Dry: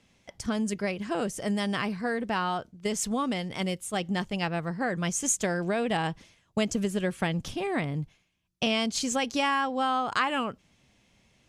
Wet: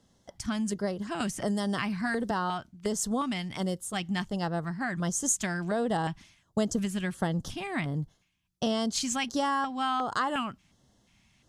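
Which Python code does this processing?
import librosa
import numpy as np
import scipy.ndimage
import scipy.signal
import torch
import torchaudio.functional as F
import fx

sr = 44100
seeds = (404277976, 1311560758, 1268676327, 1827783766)

y = fx.filter_lfo_notch(x, sr, shape='square', hz=1.4, low_hz=480.0, high_hz=2400.0, q=0.91)
y = fx.band_squash(y, sr, depth_pct=100, at=(1.2, 2.31))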